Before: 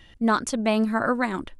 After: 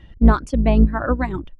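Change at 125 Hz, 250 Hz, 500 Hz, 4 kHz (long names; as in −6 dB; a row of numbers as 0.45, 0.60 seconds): +17.5, +5.0, +2.5, −6.0 decibels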